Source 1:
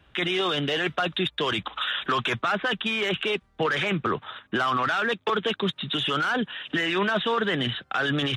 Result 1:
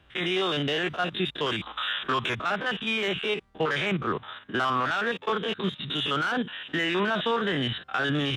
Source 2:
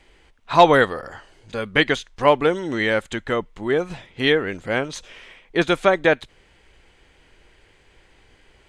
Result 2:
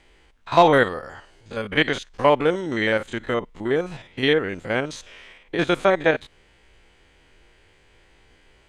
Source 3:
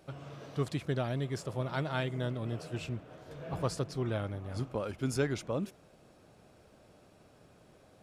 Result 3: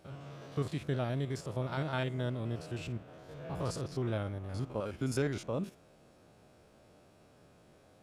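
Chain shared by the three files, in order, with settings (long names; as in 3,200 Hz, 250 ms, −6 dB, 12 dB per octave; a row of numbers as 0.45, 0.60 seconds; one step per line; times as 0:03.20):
spectrum averaged block by block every 50 ms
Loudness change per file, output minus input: −2.0, −1.5, −1.0 LU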